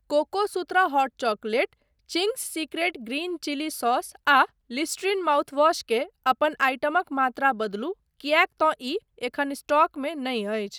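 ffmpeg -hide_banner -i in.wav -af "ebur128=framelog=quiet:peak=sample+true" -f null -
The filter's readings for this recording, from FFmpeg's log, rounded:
Integrated loudness:
  I:         -25.0 LUFS
  Threshold: -35.0 LUFS
Loudness range:
  LRA:         2.9 LU
  Threshold: -44.9 LUFS
  LRA low:   -26.5 LUFS
  LRA high:  -23.6 LUFS
Sample peak:
  Peak:       -6.4 dBFS
True peak:
  Peak:       -6.4 dBFS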